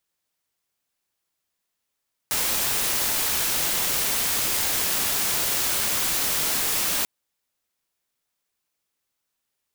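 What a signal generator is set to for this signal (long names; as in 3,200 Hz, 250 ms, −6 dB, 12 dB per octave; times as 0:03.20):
noise white, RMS −24 dBFS 4.74 s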